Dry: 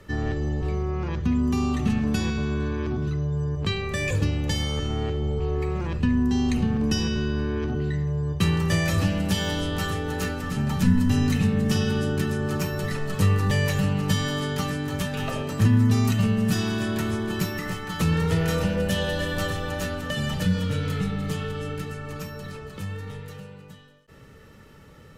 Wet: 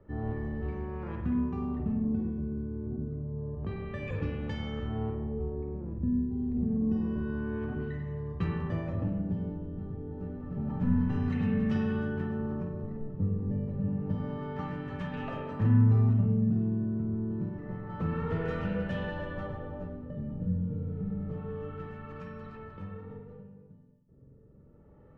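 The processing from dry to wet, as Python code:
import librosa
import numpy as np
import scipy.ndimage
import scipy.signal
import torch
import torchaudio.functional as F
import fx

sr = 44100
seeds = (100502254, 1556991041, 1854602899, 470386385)

y = fx.rev_spring(x, sr, rt60_s=1.2, pass_ms=(45,), chirp_ms=60, drr_db=2.0)
y = fx.filter_lfo_lowpass(y, sr, shape='sine', hz=0.28, low_hz=340.0, high_hz=1900.0, q=0.8)
y = F.gain(torch.from_numpy(y), -8.5).numpy()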